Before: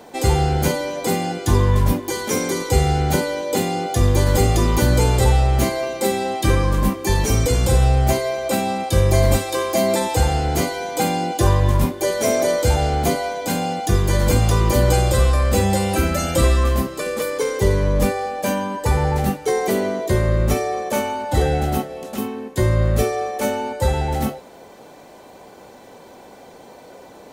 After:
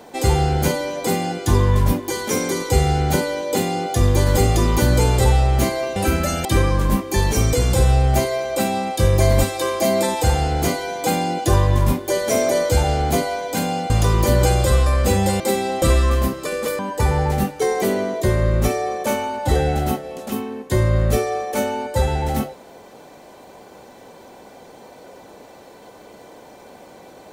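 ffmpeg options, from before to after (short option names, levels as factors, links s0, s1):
-filter_complex "[0:a]asplit=7[s0][s1][s2][s3][s4][s5][s6];[s0]atrim=end=5.962[s7];[s1]atrim=start=15.868:end=16.362[s8];[s2]atrim=start=6.378:end=13.832[s9];[s3]atrim=start=14.368:end=15.872[s10];[s4]atrim=start=5.958:end=6.382[s11];[s5]atrim=start=16.358:end=17.332[s12];[s6]atrim=start=18.648[s13];[s7][s8]acrossfade=d=0.004:c1=hsin:c2=hsin[s14];[s14][s9]acrossfade=d=0.004:c1=hsin:c2=hsin[s15];[s15][s10]acrossfade=d=0.004:c1=hsin:c2=hsin[s16];[s16][s11]acrossfade=d=0.004:c1=hsin:c2=hsin[s17];[s17][s12]acrossfade=d=0.004:c1=hsin:c2=hsin[s18];[s18][s13]acrossfade=d=0.004:c1=hsin:c2=hsin"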